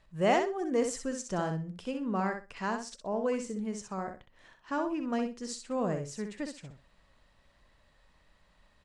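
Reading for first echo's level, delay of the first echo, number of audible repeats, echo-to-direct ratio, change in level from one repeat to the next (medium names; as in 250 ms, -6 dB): -6.5 dB, 63 ms, 2, -6.5 dB, -14.5 dB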